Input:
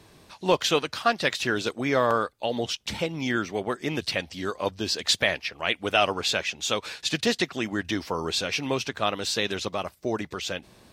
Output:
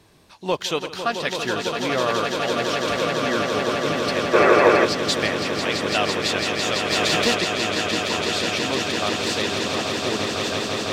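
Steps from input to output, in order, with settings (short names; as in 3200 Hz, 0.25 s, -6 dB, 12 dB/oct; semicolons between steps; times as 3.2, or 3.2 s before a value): swelling echo 0.167 s, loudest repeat 8, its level -7 dB; 4.34–4.85 spectral gain 320–2700 Hz +10 dB; 6.9–7.35 sample leveller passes 1; gain -1.5 dB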